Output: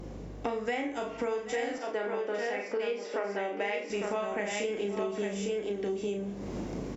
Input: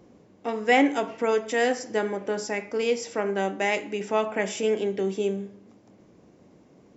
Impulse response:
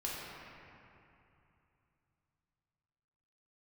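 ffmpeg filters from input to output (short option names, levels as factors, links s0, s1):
-filter_complex "[0:a]asplit=2[s0][s1];[s1]adelay=34,volume=0.596[s2];[s0][s2]amix=inputs=2:normalize=0,aecho=1:1:45|773|855:0.398|0.119|0.531,dynaudnorm=f=450:g=7:m=3.76,aeval=exprs='val(0)+0.00282*(sin(2*PI*50*n/s)+sin(2*PI*2*50*n/s)/2+sin(2*PI*3*50*n/s)/3+sin(2*PI*4*50*n/s)/4+sin(2*PI*5*50*n/s)/5)':c=same,asettb=1/sr,asplit=3[s3][s4][s5];[s3]atrim=end=1.784[s6];[s4]atrim=start=1.78:end=3.9,asetpts=PTS-STARTPTS,afade=t=in:d=0.004:c=qsin,afade=t=out:st=2.116:d=0.004:c=qsin,highpass=310,lowpass=3700[s7];[s5]atrim=start=3.896[s8];[s6][s7]acrossfade=d=0.004:c1=hsin:c2=qsin[s9];[s9][s8]acrossfade=d=0.004:c1=qsin:c2=hsin,acompressor=threshold=0.0126:ratio=12,volume=2.51" -ar 48000 -c:a libopus -b:a 96k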